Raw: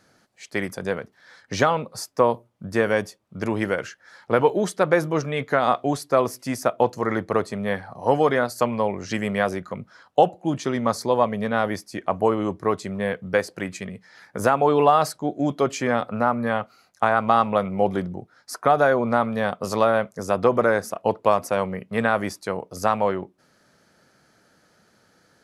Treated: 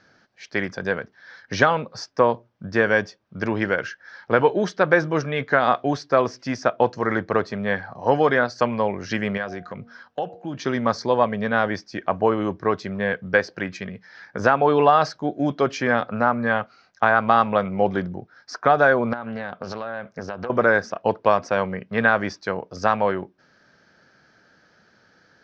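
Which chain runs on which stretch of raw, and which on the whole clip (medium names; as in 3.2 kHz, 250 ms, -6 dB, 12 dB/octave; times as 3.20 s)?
9.37–10.60 s: de-hum 236.3 Hz, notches 3 + compression 2:1, threshold -32 dBFS
19.13–20.50 s: compression 16:1, threshold -26 dBFS + distance through air 73 m + loudspeaker Doppler distortion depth 0.26 ms
whole clip: elliptic low-pass 5.7 kHz, stop band 60 dB; peaking EQ 1.6 kHz +8 dB 0.22 oct; trim +1.5 dB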